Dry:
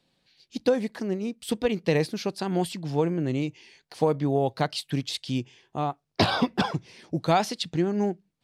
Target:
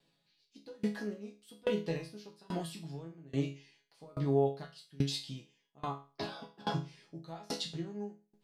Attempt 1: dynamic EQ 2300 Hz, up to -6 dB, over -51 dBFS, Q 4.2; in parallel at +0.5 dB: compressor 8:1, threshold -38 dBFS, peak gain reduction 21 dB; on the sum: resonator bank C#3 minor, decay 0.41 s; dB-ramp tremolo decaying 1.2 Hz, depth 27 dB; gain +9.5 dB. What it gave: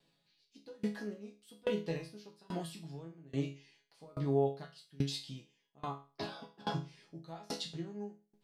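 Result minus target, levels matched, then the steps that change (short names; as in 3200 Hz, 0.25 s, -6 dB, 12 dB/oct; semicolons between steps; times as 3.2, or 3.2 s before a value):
compressor: peak gain reduction +9 dB
change: compressor 8:1, threshold -28 dBFS, peak gain reduction 12 dB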